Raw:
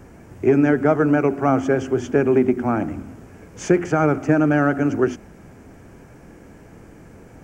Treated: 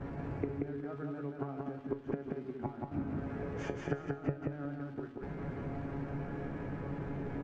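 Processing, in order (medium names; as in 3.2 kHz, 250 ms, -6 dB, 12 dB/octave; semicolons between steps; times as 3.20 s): inverted gate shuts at -15 dBFS, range -29 dB; crackle 590 per s -46 dBFS; gate -49 dBFS, range -8 dB; feedback comb 140 Hz, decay 0.24 s, harmonics all, mix 80%; on a send at -19.5 dB: reverberation RT60 1.3 s, pre-delay 40 ms; on the sum: compression 2:1, threshold -51 dBFS, peak gain reduction 11.5 dB; low-pass 1.8 kHz 12 dB/octave; peaking EQ 160 Hz +5 dB 0.21 oct; feedback delay 181 ms, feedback 23%, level -3 dB; trim +12 dB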